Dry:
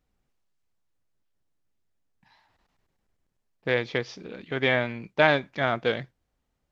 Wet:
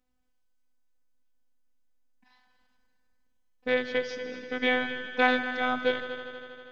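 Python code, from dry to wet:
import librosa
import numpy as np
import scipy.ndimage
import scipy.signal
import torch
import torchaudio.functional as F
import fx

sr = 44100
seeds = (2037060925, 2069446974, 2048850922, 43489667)

y = fx.robotise(x, sr, hz=252.0)
y = fx.echo_heads(y, sr, ms=80, heads='all three', feedback_pct=67, wet_db=-15.5)
y = fx.end_taper(y, sr, db_per_s=280.0)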